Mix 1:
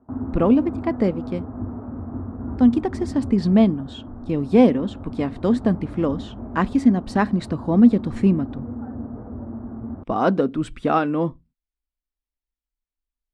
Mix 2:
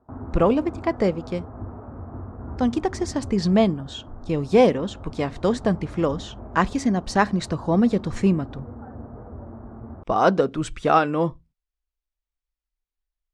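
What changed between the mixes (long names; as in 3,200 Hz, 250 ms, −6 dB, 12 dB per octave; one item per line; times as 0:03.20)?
speech +3.0 dB
master: add graphic EQ with 15 bands 100 Hz −3 dB, 250 Hz −11 dB, 6,300 Hz +9 dB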